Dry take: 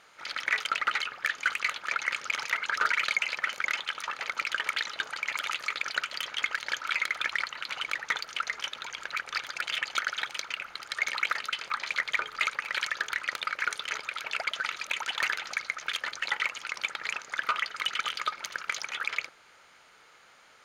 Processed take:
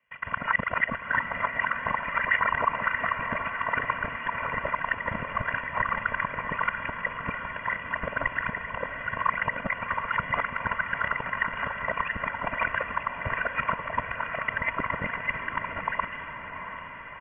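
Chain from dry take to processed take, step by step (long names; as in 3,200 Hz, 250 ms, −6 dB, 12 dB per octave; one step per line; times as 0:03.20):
reversed piece by piece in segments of 125 ms
noise gate −54 dBFS, range −21 dB
comb filter 2.2 ms, depth 82%
dynamic equaliser 210 Hz, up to −8 dB, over −59 dBFS, Q 1.4
reversed playback
upward compression, threshold −36 dBFS
reversed playback
tempo change 1.2×
feedback delay with all-pass diffusion 737 ms, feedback 59%, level −8 dB
voice inversion scrambler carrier 3,300 Hz
Ogg Vorbis 64 kbit/s 22,050 Hz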